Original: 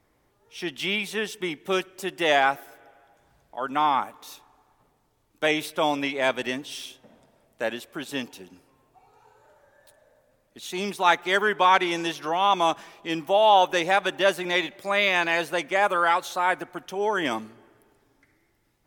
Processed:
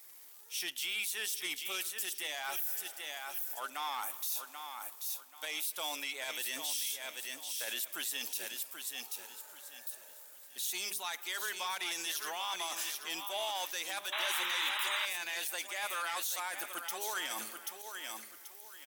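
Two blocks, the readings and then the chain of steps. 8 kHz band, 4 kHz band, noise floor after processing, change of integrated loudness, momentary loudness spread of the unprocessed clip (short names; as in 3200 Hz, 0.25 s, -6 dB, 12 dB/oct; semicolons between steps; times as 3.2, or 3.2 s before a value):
+4.5 dB, -5.5 dB, -54 dBFS, -12.0 dB, 14 LU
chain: RIAA curve recording; reverse; compressor 4:1, threshold -35 dBFS, peak gain reduction 18 dB; reverse; crackle 150/s -50 dBFS; de-hum 201.8 Hz, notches 3; on a send: feedback echo 0.784 s, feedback 28%, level -9 dB; on the sum: soft clip -28 dBFS, distortion -16 dB; tilt +3 dB/oct; limiter -26 dBFS, peak gain reduction 9.5 dB; painted sound noise, 14.12–15.06, 820–4000 Hz -35 dBFS; gain -1 dB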